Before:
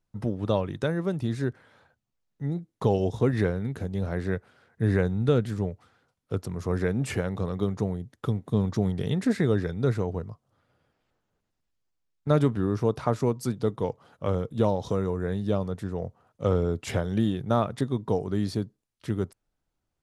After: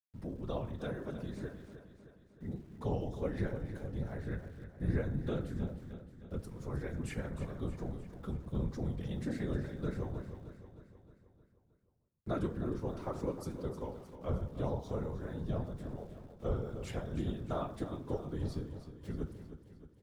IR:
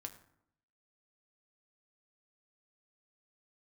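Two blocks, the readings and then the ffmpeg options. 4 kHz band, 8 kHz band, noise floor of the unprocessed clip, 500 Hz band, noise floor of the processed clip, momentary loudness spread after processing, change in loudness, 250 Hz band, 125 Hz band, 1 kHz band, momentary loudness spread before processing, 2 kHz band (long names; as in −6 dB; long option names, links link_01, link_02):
−13.0 dB, −13.0 dB, −81 dBFS, −12.5 dB, −67 dBFS, 12 LU, −11.5 dB, −11.5 dB, −11.0 dB, −12.0 dB, 9 LU, −12.0 dB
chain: -filter_complex "[1:a]atrim=start_sample=2205,afade=type=out:start_time=0.32:duration=0.01,atrim=end_sample=14553[link_01];[0:a][link_01]afir=irnorm=-1:irlink=0,afftfilt=real='hypot(re,im)*cos(2*PI*random(0))':imag='hypot(re,im)*sin(2*PI*random(1))':win_size=512:overlap=0.75,aeval=exprs='val(0)*gte(abs(val(0)),0.00112)':channel_layout=same,aecho=1:1:310|620|930|1240|1550|1860:0.266|0.144|0.0776|0.0419|0.0226|0.0122,volume=-3dB"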